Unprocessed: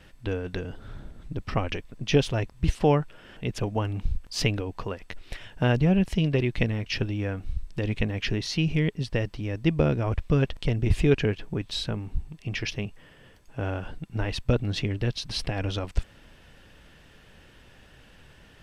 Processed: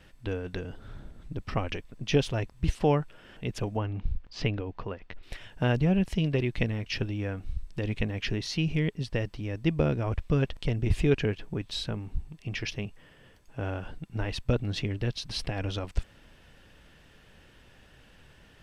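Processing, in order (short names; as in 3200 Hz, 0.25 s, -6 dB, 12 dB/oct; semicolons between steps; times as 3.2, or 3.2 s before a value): 3.77–5.23 air absorption 190 m; gain -3 dB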